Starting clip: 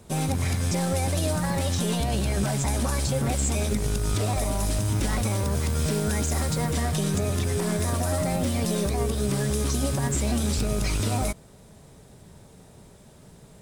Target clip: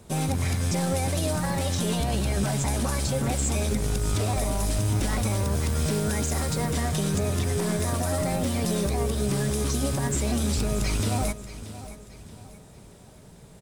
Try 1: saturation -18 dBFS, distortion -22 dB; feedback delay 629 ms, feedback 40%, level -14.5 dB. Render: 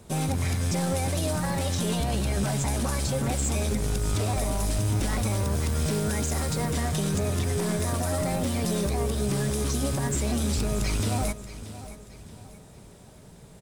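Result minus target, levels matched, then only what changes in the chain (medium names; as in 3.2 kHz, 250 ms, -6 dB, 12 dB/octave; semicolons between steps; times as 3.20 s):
saturation: distortion +10 dB
change: saturation -12 dBFS, distortion -32 dB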